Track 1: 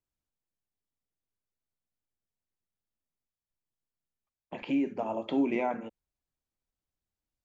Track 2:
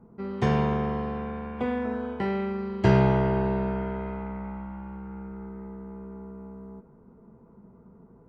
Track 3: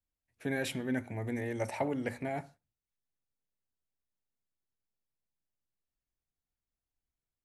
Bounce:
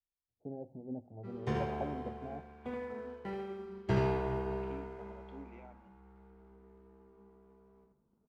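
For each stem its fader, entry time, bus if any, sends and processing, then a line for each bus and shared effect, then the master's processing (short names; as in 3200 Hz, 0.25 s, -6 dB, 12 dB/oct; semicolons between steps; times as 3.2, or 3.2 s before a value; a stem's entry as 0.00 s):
-17.0 dB, 0.00 s, no send, no echo send, dry
-8.0 dB, 1.05 s, no send, echo send -5 dB, sample leveller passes 1; flange 0.46 Hz, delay 4.7 ms, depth 7.5 ms, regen -79%
-3.0 dB, 0.00 s, no send, echo send -23 dB, Chebyshev low-pass 810 Hz, order 5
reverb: off
echo: feedback echo 79 ms, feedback 29%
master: upward expander 1.5:1, over -45 dBFS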